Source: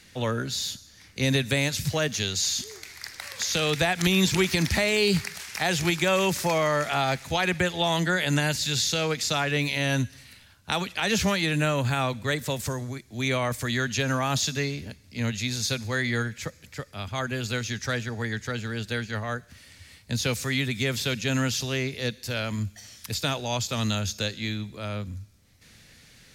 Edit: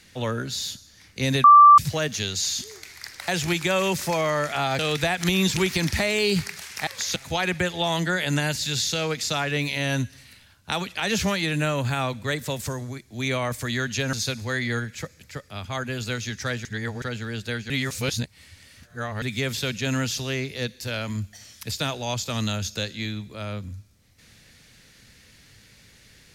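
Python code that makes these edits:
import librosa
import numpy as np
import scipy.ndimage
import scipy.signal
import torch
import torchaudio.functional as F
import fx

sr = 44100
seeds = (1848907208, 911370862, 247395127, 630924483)

y = fx.edit(x, sr, fx.bleep(start_s=1.44, length_s=0.34, hz=1170.0, db=-7.0),
    fx.swap(start_s=3.28, length_s=0.29, other_s=5.65, other_length_s=1.51),
    fx.cut(start_s=14.13, length_s=1.43),
    fx.reverse_span(start_s=18.08, length_s=0.37),
    fx.reverse_span(start_s=19.13, length_s=1.52), tone=tone)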